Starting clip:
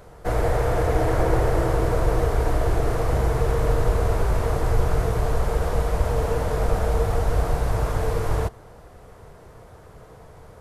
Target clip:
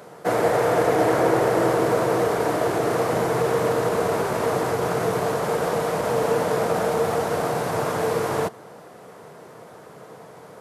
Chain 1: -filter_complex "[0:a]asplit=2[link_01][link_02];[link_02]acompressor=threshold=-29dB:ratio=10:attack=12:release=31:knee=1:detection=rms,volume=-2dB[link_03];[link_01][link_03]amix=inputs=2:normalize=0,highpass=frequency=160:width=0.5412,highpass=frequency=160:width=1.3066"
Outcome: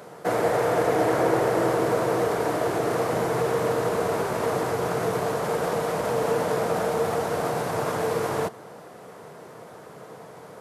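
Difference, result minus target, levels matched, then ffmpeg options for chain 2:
downward compressor: peak gain reduction +9 dB
-filter_complex "[0:a]asplit=2[link_01][link_02];[link_02]acompressor=threshold=-19dB:ratio=10:attack=12:release=31:knee=1:detection=rms,volume=-2dB[link_03];[link_01][link_03]amix=inputs=2:normalize=0,highpass=frequency=160:width=0.5412,highpass=frequency=160:width=1.3066"

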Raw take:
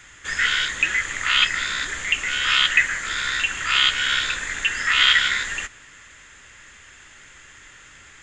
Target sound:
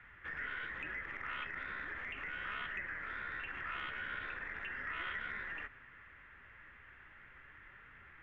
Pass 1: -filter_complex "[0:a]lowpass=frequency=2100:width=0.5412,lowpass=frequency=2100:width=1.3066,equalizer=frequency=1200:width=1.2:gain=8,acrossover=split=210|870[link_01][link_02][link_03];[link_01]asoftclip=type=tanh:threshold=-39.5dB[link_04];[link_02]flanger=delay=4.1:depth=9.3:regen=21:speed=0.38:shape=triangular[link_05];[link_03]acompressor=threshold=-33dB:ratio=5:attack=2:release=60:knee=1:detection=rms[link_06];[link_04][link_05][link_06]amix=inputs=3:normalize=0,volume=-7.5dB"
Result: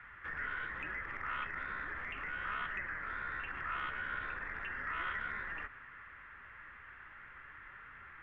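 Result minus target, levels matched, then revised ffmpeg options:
soft clipping: distortion −6 dB; 1,000 Hz band +3.0 dB
-filter_complex "[0:a]lowpass=frequency=2100:width=0.5412,lowpass=frequency=2100:width=1.3066,acrossover=split=210|870[link_01][link_02][link_03];[link_01]asoftclip=type=tanh:threshold=-46.5dB[link_04];[link_02]flanger=delay=4.1:depth=9.3:regen=21:speed=0.38:shape=triangular[link_05];[link_03]acompressor=threshold=-33dB:ratio=5:attack=2:release=60:knee=1:detection=rms[link_06];[link_04][link_05][link_06]amix=inputs=3:normalize=0,volume=-7.5dB"

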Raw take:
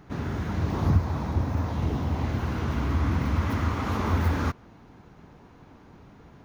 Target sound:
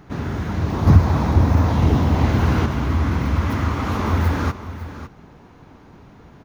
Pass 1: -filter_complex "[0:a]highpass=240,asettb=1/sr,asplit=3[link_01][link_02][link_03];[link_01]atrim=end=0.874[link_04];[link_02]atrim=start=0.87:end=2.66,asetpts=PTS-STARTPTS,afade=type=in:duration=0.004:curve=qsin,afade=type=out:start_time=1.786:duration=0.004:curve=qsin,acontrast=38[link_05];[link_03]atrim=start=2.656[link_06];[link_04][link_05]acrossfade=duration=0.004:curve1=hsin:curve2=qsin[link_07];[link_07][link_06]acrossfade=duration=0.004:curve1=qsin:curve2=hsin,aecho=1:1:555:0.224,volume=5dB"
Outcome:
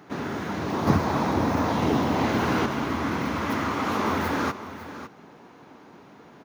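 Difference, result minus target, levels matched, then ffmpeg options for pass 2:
250 Hz band +3.0 dB
-filter_complex "[0:a]asettb=1/sr,asplit=3[link_01][link_02][link_03];[link_01]atrim=end=0.874[link_04];[link_02]atrim=start=0.87:end=2.66,asetpts=PTS-STARTPTS,afade=type=in:duration=0.004:curve=qsin,afade=type=out:start_time=1.786:duration=0.004:curve=qsin,acontrast=38[link_05];[link_03]atrim=start=2.656[link_06];[link_04][link_05]acrossfade=duration=0.004:curve1=hsin:curve2=qsin[link_07];[link_07][link_06]acrossfade=duration=0.004:curve1=qsin:curve2=hsin,aecho=1:1:555:0.224,volume=5dB"

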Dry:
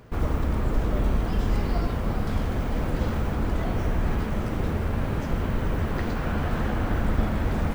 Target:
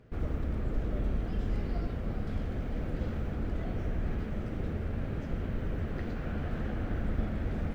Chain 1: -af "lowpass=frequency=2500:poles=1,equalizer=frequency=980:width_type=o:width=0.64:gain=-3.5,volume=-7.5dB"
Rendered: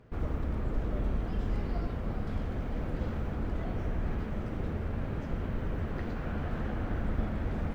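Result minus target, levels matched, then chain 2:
1,000 Hz band +3.0 dB
-af "lowpass=frequency=2500:poles=1,equalizer=frequency=980:width_type=o:width=0.64:gain=-9.5,volume=-7.5dB"

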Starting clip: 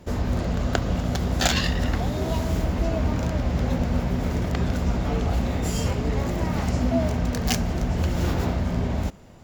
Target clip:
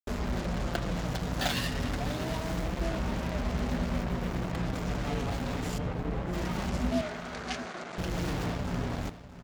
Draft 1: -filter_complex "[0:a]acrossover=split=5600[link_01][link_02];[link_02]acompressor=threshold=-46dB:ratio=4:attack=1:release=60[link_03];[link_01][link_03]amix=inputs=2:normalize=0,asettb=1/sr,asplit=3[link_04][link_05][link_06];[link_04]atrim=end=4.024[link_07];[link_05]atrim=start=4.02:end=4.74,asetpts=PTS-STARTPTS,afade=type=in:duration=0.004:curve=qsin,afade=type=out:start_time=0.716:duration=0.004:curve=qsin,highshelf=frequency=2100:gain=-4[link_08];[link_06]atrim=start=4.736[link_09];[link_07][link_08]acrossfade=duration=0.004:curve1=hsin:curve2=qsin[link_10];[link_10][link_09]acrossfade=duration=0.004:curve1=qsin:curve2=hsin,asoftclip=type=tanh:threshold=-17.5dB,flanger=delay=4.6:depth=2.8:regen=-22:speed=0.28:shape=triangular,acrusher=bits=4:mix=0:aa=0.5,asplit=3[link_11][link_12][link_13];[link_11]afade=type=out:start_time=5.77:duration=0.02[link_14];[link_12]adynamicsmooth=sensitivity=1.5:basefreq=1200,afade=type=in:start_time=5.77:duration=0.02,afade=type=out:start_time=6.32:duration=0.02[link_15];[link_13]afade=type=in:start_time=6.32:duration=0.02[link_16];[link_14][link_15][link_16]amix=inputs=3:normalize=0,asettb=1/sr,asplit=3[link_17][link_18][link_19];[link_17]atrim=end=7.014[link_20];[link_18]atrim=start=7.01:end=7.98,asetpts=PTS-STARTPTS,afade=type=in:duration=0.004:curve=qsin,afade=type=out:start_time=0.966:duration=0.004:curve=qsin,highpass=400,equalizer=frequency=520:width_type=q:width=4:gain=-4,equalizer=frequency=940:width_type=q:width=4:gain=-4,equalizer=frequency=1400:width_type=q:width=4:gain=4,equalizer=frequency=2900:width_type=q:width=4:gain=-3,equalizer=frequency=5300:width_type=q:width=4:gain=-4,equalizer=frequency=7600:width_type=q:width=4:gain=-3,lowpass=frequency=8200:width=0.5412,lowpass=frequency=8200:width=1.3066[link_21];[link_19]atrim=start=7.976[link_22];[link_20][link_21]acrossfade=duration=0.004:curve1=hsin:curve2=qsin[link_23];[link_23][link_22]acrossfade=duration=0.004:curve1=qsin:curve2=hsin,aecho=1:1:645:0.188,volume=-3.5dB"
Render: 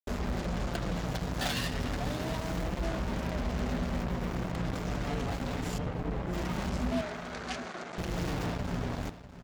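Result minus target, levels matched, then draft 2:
soft clipping: distortion +16 dB
-filter_complex "[0:a]acrossover=split=5600[link_01][link_02];[link_02]acompressor=threshold=-46dB:ratio=4:attack=1:release=60[link_03];[link_01][link_03]amix=inputs=2:normalize=0,asettb=1/sr,asplit=3[link_04][link_05][link_06];[link_04]atrim=end=4.024[link_07];[link_05]atrim=start=4.02:end=4.74,asetpts=PTS-STARTPTS,afade=type=in:duration=0.004:curve=qsin,afade=type=out:start_time=0.716:duration=0.004:curve=qsin,highshelf=frequency=2100:gain=-4[link_08];[link_06]atrim=start=4.736[link_09];[link_07][link_08]acrossfade=duration=0.004:curve1=hsin:curve2=qsin[link_10];[link_10][link_09]acrossfade=duration=0.004:curve1=qsin:curve2=hsin,asoftclip=type=tanh:threshold=-6.5dB,flanger=delay=4.6:depth=2.8:regen=-22:speed=0.28:shape=triangular,acrusher=bits=4:mix=0:aa=0.5,asplit=3[link_11][link_12][link_13];[link_11]afade=type=out:start_time=5.77:duration=0.02[link_14];[link_12]adynamicsmooth=sensitivity=1.5:basefreq=1200,afade=type=in:start_time=5.77:duration=0.02,afade=type=out:start_time=6.32:duration=0.02[link_15];[link_13]afade=type=in:start_time=6.32:duration=0.02[link_16];[link_14][link_15][link_16]amix=inputs=3:normalize=0,asettb=1/sr,asplit=3[link_17][link_18][link_19];[link_17]atrim=end=7.014[link_20];[link_18]atrim=start=7.01:end=7.98,asetpts=PTS-STARTPTS,afade=type=in:duration=0.004:curve=qsin,afade=type=out:start_time=0.966:duration=0.004:curve=qsin,highpass=400,equalizer=frequency=520:width_type=q:width=4:gain=-4,equalizer=frequency=940:width_type=q:width=4:gain=-4,equalizer=frequency=1400:width_type=q:width=4:gain=4,equalizer=frequency=2900:width_type=q:width=4:gain=-3,equalizer=frequency=5300:width_type=q:width=4:gain=-4,equalizer=frequency=7600:width_type=q:width=4:gain=-3,lowpass=frequency=8200:width=0.5412,lowpass=frequency=8200:width=1.3066[link_21];[link_19]atrim=start=7.976[link_22];[link_20][link_21]acrossfade=duration=0.004:curve1=hsin:curve2=qsin[link_23];[link_23][link_22]acrossfade=duration=0.004:curve1=qsin:curve2=hsin,aecho=1:1:645:0.188,volume=-3.5dB"

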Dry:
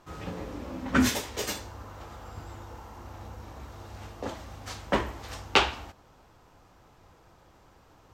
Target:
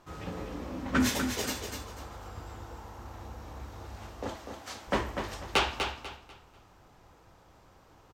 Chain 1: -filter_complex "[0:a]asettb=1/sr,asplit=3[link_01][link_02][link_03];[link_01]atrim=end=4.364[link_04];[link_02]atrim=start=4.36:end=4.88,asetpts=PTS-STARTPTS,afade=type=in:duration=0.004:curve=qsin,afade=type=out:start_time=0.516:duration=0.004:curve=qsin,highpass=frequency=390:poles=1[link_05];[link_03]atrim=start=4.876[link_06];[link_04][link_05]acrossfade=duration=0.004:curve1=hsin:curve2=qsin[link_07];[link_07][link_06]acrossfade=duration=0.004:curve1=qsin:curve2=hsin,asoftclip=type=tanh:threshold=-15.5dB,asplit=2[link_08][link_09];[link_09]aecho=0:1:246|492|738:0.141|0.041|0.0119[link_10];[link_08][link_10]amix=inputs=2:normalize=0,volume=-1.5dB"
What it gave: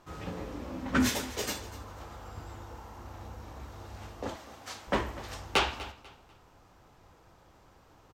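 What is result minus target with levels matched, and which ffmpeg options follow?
echo-to-direct −10.5 dB
-filter_complex "[0:a]asettb=1/sr,asplit=3[link_01][link_02][link_03];[link_01]atrim=end=4.364[link_04];[link_02]atrim=start=4.36:end=4.88,asetpts=PTS-STARTPTS,afade=type=in:duration=0.004:curve=qsin,afade=type=out:start_time=0.516:duration=0.004:curve=qsin,highpass=frequency=390:poles=1[link_05];[link_03]atrim=start=4.876[link_06];[link_04][link_05]acrossfade=duration=0.004:curve1=hsin:curve2=qsin[link_07];[link_07][link_06]acrossfade=duration=0.004:curve1=qsin:curve2=hsin,asoftclip=type=tanh:threshold=-15.5dB,asplit=2[link_08][link_09];[link_09]aecho=0:1:246|492|738|984:0.473|0.137|0.0398|0.0115[link_10];[link_08][link_10]amix=inputs=2:normalize=0,volume=-1.5dB"

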